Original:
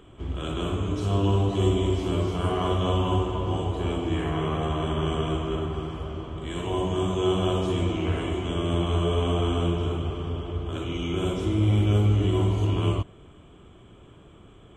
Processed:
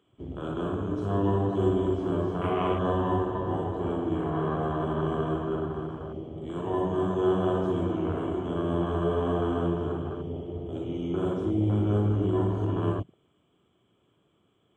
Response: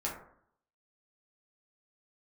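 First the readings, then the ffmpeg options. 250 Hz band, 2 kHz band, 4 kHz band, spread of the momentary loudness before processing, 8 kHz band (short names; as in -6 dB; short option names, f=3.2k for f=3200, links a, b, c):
-0.5 dB, -4.0 dB, -13.0 dB, 9 LU, under -15 dB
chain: -af "highpass=130,afwtdn=0.0178,equalizer=f=3.2k:w=5.9:g=4"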